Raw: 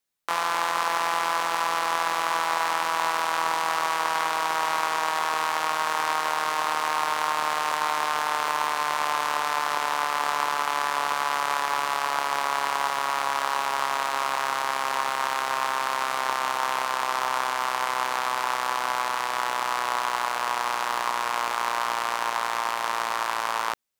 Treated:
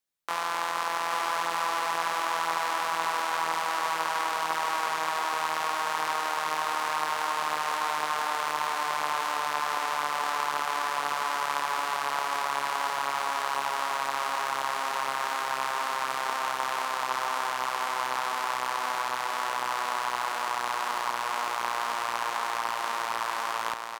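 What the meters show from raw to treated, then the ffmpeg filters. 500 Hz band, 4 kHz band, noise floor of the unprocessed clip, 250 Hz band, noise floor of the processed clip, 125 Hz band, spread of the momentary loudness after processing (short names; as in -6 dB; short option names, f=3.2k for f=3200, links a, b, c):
-3.5 dB, -3.5 dB, -29 dBFS, -3.5 dB, -32 dBFS, n/a, 2 LU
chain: -af "aecho=1:1:821:0.562,volume=-4.5dB"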